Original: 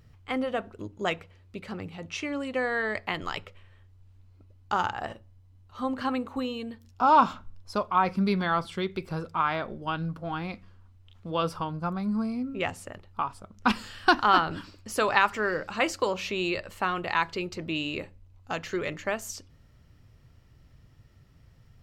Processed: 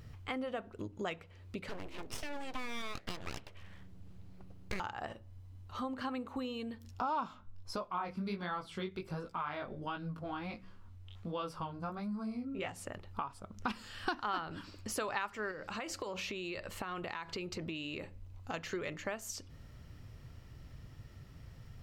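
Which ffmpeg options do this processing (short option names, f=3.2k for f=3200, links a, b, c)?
-filter_complex "[0:a]asettb=1/sr,asplit=3[a][b][c];[a]atrim=end=1.694[d];[b]atrim=start=1.69:end=4.8,asetpts=PTS-STARTPTS,afade=t=in:d=0.004:c=qsin,afade=t=out:st=3.106:d=0.004:c=qsin,aeval=exprs='abs(val(0))':c=same[e];[c]atrim=start=4.796[f];[d][e]acrossfade=d=0.004:c1=hsin:c2=qsin[g];[g][f]acrossfade=d=0.004:c1=qsin:c2=hsin,asplit=3[h][i][j];[h]afade=t=out:st=7.27:d=0.02[k];[i]flanger=delay=15.5:depth=6.7:speed=1.4,afade=t=in:st=7.27:d=0.02,afade=t=out:st=12.75:d=0.02[l];[j]afade=t=in:st=12.75:d=0.02[m];[k][l][m]amix=inputs=3:normalize=0,asettb=1/sr,asplit=3[n][o][p];[n]atrim=end=15.514[q];[o]atrim=start=15.51:end=18.54,asetpts=PTS-STARTPTS,afade=t=in:d=0.004:c=qsin,afade=t=out:st=3.026:d=0.004:c=qsin,acompressor=threshold=-32dB:ratio=6:attack=3.2:release=140:knee=1:detection=peak[r];[p]atrim=start=18.536[s];[q][r]acrossfade=d=0.004:c1=hsin:c2=qsin[t];[t][s]acrossfade=d=0.004:c1=qsin:c2=hsin,acompressor=threshold=-45dB:ratio=3,volume=4.5dB"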